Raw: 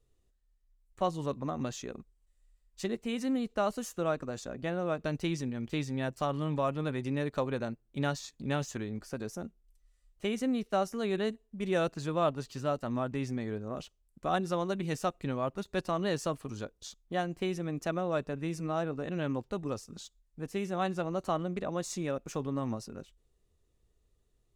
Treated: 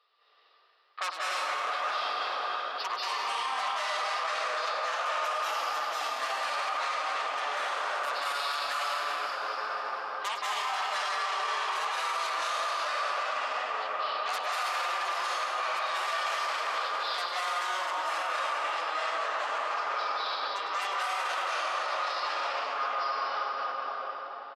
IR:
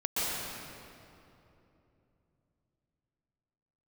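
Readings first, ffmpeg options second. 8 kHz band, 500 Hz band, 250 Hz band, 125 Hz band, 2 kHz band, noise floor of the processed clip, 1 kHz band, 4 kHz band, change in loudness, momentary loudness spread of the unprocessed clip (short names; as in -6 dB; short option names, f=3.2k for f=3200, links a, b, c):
+3.5 dB, -4.5 dB, under -25 dB, under -40 dB, +11.5 dB, -40 dBFS, +9.5 dB, +11.5 dB, +3.5 dB, 9 LU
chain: -filter_complex "[0:a]aresample=11025,aresample=44100,asplit=2[a][b];[b]aeval=exprs='0.15*sin(PI/2*7.08*val(0)/0.15)':c=same,volume=-4.5dB[c];[a][c]amix=inputs=2:normalize=0,equalizer=f=1.2k:w=7.7:g=12.5,aecho=1:1:101:0.224[d];[1:a]atrim=start_sample=2205,asetrate=28224,aresample=44100[e];[d][e]afir=irnorm=-1:irlink=0,areverse,acompressor=threshold=-17dB:ratio=10,areverse,highpass=f=760:w=0.5412,highpass=f=760:w=1.3066,alimiter=limit=-19dB:level=0:latency=1:release=24,volume=-3.5dB"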